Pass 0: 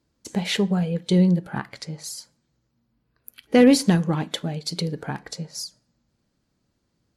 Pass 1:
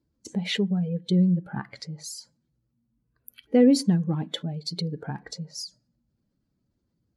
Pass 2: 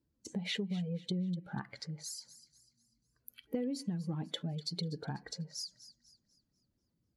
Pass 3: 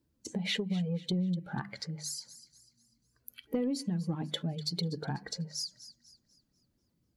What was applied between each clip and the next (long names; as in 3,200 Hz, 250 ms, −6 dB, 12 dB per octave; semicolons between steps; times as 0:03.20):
expanding power law on the bin magnitudes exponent 1.5; level −3 dB
downward compressor 12 to 1, threshold −27 dBFS, peak gain reduction 14.5 dB; delay with a high-pass on its return 246 ms, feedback 38%, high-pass 2,200 Hz, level −14.5 dB; level −5.5 dB
mains-hum notches 50/100/150/200 Hz; soft clipping −25 dBFS, distortion −26 dB; level +5 dB